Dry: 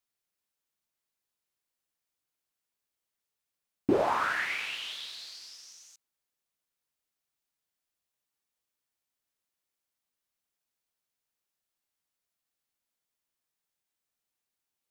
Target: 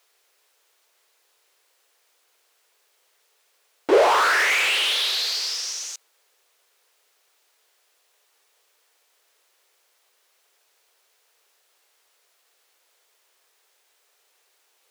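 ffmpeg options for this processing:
ffmpeg -i in.wav -filter_complex "[0:a]asplit=2[link_01][link_02];[link_02]highpass=frequency=720:poles=1,volume=31dB,asoftclip=type=tanh:threshold=-13.5dB[link_03];[link_01][link_03]amix=inputs=2:normalize=0,lowpass=frequency=5900:poles=1,volume=-6dB,lowshelf=frequency=290:width_type=q:width=3:gain=-13" out.wav

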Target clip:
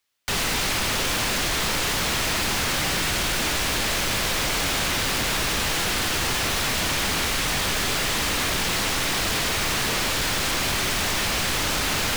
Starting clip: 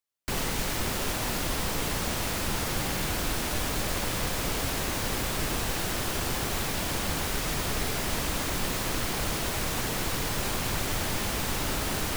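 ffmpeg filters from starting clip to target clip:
ffmpeg -i in.wav -filter_complex "[0:a]acrossover=split=190|1400|5200[link_01][link_02][link_03][link_04];[link_03]acontrast=88[link_05];[link_04]alimiter=level_in=8dB:limit=-24dB:level=0:latency=1,volume=-8dB[link_06];[link_01][link_02][link_05][link_06]amix=inputs=4:normalize=0,aeval=exprs='0.224*sin(PI/2*5.01*val(0)/0.224)':channel_layout=same,volume=-8dB" out.wav

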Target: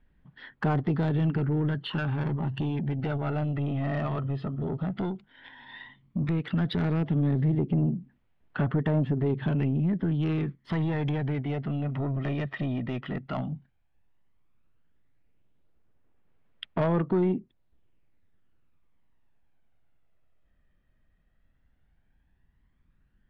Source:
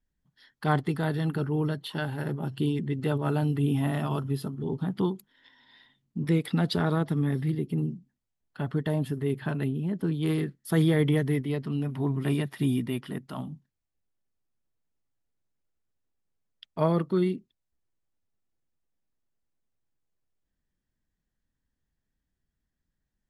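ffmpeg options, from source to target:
ffmpeg -i in.wav -filter_complex "[0:a]lowpass=frequency=3000:width=0.5412,lowpass=frequency=3000:width=1.3066,asplit=2[link_01][link_02];[link_02]alimiter=limit=-22.5dB:level=0:latency=1:release=64,volume=1dB[link_03];[link_01][link_03]amix=inputs=2:normalize=0,acompressor=threshold=-36dB:ratio=2,asoftclip=type=tanh:threshold=-27.5dB,aphaser=in_gain=1:out_gain=1:delay=1.6:decay=0.4:speed=0.12:type=sinusoidal,volume=5dB" out.wav

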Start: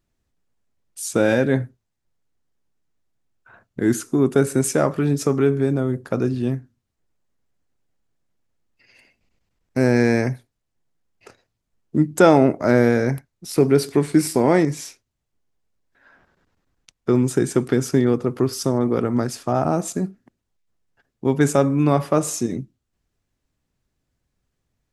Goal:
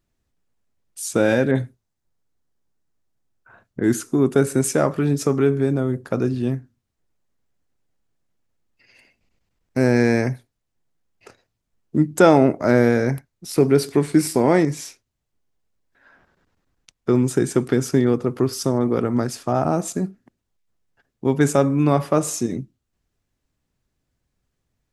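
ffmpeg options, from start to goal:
ffmpeg -i in.wav -filter_complex "[0:a]asettb=1/sr,asplit=3[link_01][link_02][link_03];[link_01]atrim=end=1.514[link_04];[link_02]atrim=start=1.51:end=3.84,asetpts=PTS-STARTPTS,afade=type=in:duration=0.004:curve=qsin,afade=type=out:start_time=2.326:duration=0.004:curve=qsin,acrossover=split=2600[link_05][link_06];[link_06]adelay=40[link_07];[link_05][link_07]amix=inputs=2:normalize=0,atrim=end_sample=102753[link_08];[link_03]atrim=start=3.836[link_09];[link_04][link_08]acrossfade=duration=0.004:curve1=hsin:curve2=qsin[link_10];[link_10][link_09]acrossfade=duration=0.004:curve1=qsin:curve2=hsin" out.wav

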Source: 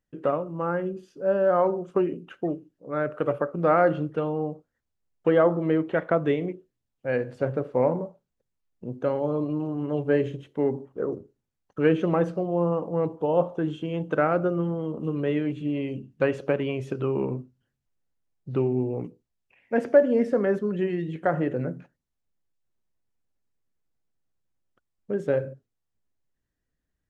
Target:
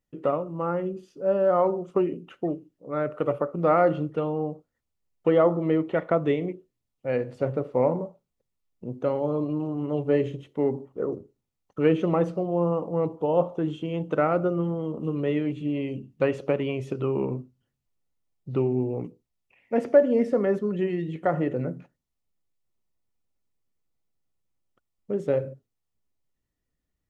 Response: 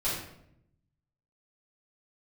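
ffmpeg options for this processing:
-af "bandreject=frequency=1600:width=6.1"

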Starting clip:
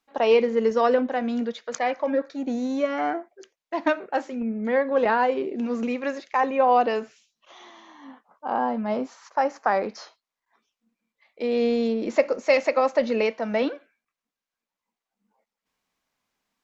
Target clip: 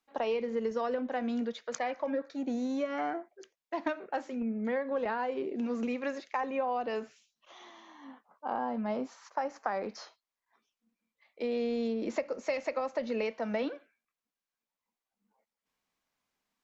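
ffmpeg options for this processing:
ffmpeg -i in.wav -filter_complex "[0:a]acrossover=split=140[link_01][link_02];[link_02]acompressor=threshold=-24dB:ratio=6[link_03];[link_01][link_03]amix=inputs=2:normalize=0,volume=-5dB" out.wav

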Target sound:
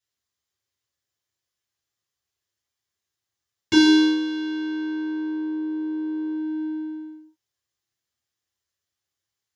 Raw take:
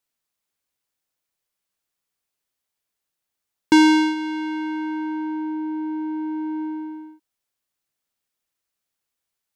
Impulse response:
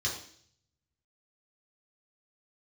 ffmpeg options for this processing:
-filter_complex "[0:a]asettb=1/sr,asplit=3[link_01][link_02][link_03];[link_01]atrim=end=3.764[link_04];[link_02]atrim=start=3.76:end=6.34,asetpts=PTS-STARTPTS,afade=type=in:duration=0.004:curve=qsin,afade=type=out:start_time=2.576:duration=0.004:curve=qsin,asplit=3[link_05][link_06][link_07];[link_06]adelay=82,afreqshift=91,volume=-22dB[link_08];[link_07]adelay=164,afreqshift=182,volume=-31.4dB[link_09];[link_05][link_08][link_09]amix=inputs=3:normalize=0,atrim=end_sample=113778[link_10];[link_03]atrim=start=6.336[link_11];[link_04][link_10]acrossfade=duration=0.004:curve1=hsin:curve2=qsin[link_12];[link_12][link_11]acrossfade=duration=0.004:curve1=qsin:curve2=hsin[link_13];[1:a]atrim=start_sample=2205,afade=type=out:start_time=0.23:duration=0.01,atrim=end_sample=10584[link_14];[link_13][link_14]afir=irnorm=-1:irlink=0,volume=-7dB"

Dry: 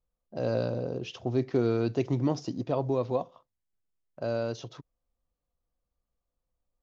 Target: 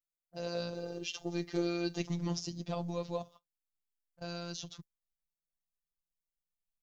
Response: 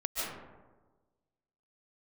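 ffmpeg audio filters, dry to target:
-filter_complex "[0:a]asettb=1/sr,asplit=3[link_01][link_02][link_03];[link_01]atrim=end=0.754[link_04];[link_02]atrim=start=0.75:end=2.01,asetpts=PTS-STARTPTS,afade=type=in:duration=0.004:curve=qsin,afade=type=out:start_time=1.256:duration=0.004:curve=qsin,aecho=1:1:2.5:0.82,atrim=end_sample=55566[link_05];[link_03]atrim=start=2.006[link_06];[link_04][link_05]acrossfade=duration=0.004:curve1=hsin:curve2=qsin[link_07];[link_07][link_06]acrossfade=duration=0.004:curve1=qsin:curve2=hsin,agate=range=-16dB:threshold=-47dB:ratio=16:detection=peak,afftfilt=real='hypot(re,im)*cos(PI*b)':imag='0':win_size=1024:overlap=0.75,asubboost=boost=5:cutoff=180,crystalizer=i=6.5:c=0,volume=-6dB"

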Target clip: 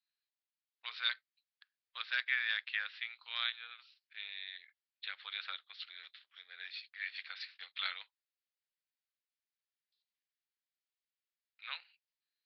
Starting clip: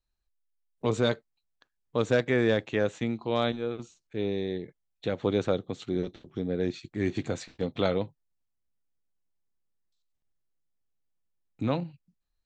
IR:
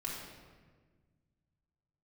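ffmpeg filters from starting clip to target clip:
-af "tremolo=f=270:d=0.261,asuperpass=centerf=4100:order=8:qfactor=0.51,aresample=11025,aresample=44100,volume=2dB"

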